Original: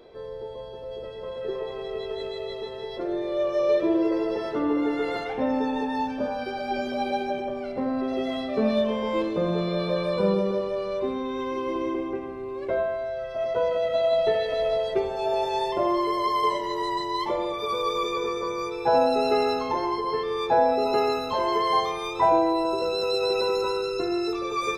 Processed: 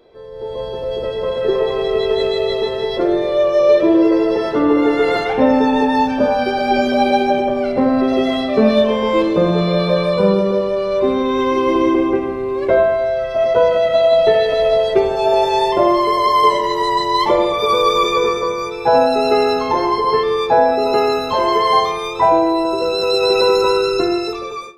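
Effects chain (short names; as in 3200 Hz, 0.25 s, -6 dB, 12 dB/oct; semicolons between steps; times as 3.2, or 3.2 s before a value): ending faded out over 0.85 s; AGC gain up to 16 dB; on a send: reverb RT60 0.85 s, pre-delay 47 ms, DRR 15.5 dB; on the sum: gain -1 dB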